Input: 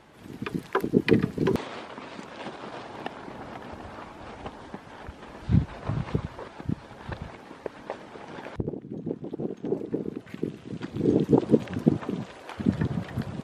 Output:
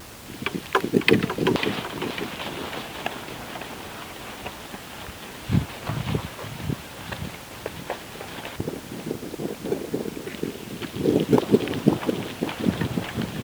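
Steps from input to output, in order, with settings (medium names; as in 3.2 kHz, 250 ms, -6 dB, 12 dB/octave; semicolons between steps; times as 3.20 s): peaking EQ 3.1 kHz +14 dB 1.5 oct; gate with hold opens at -31 dBFS; on a send: feedback delay 549 ms, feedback 52%, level -9 dB; on the sum: dynamic bell 830 Hz, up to +5 dB, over -36 dBFS, Q 0.76; in parallel at -12 dB: decimation with a swept rate 16× 2.5 Hz; on the sum: added noise pink -39 dBFS; high-pass 63 Hz; vibrato with a chosen wave saw down 5.8 Hz, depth 160 cents; trim -2 dB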